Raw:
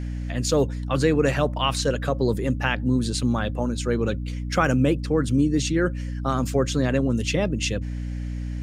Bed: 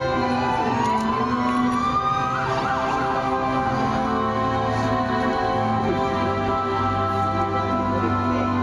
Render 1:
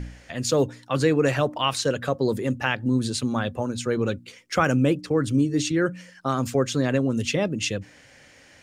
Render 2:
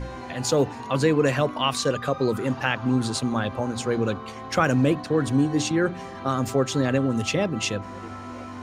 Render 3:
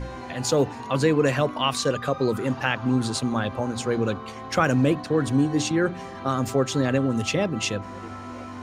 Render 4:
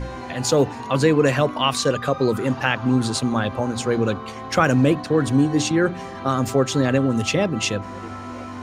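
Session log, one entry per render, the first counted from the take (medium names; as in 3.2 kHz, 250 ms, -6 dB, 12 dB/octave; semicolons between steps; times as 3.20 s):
de-hum 60 Hz, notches 5
add bed -15.5 dB
no audible change
trim +3.5 dB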